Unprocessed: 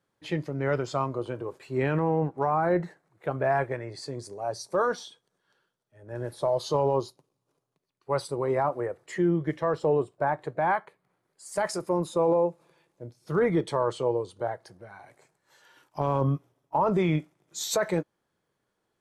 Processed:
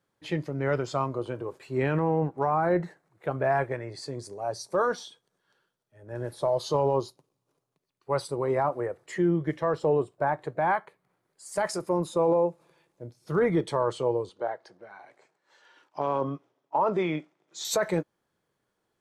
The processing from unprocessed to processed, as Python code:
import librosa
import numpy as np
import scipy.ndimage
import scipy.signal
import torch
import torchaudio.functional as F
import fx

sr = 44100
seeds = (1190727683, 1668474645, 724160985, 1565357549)

y = fx.bandpass_edges(x, sr, low_hz=270.0, high_hz=5300.0, at=(14.29, 17.65))